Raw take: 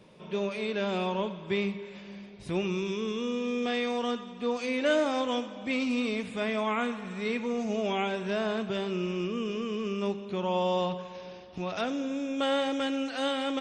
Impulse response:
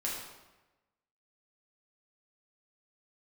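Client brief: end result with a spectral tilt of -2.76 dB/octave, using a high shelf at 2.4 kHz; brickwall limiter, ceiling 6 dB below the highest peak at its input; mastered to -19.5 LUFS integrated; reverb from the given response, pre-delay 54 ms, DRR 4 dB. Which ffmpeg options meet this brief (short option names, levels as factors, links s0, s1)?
-filter_complex "[0:a]highshelf=f=2400:g=8,alimiter=limit=0.1:level=0:latency=1,asplit=2[s0][s1];[1:a]atrim=start_sample=2205,adelay=54[s2];[s1][s2]afir=irnorm=-1:irlink=0,volume=0.398[s3];[s0][s3]amix=inputs=2:normalize=0,volume=2.99"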